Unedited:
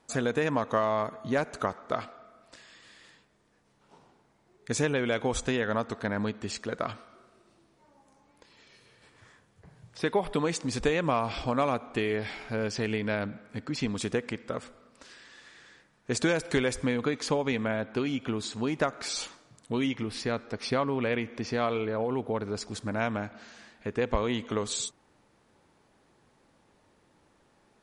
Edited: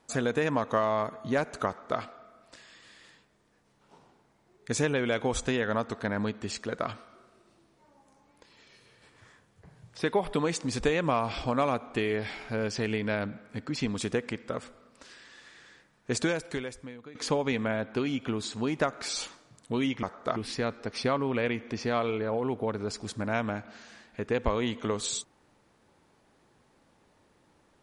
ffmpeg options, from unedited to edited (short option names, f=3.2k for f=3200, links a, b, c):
-filter_complex "[0:a]asplit=4[a][b][c][d];[a]atrim=end=17.15,asetpts=PTS-STARTPTS,afade=t=out:st=16.15:d=1:c=qua:silence=0.112202[e];[b]atrim=start=17.15:end=20.032,asetpts=PTS-STARTPTS,afade=t=in:d=0.004:c=hsin:silence=0.112202[f];[c]atrim=start=1.668:end=2.002[g];[d]atrim=start=20.028[h];[e][f]concat=n=2:v=0:a=1[i];[i][g]acrossfade=d=0.004:c1=hsin:c2=hsin[j];[j][h]acrossfade=d=0.004:c1=hsin:c2=hsin"